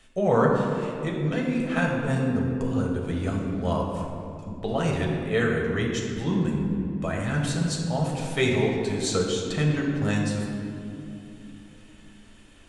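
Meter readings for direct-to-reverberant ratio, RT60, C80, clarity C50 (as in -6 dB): -2.0 dB, 2.7 s, 3.0 dB, 1.5 dB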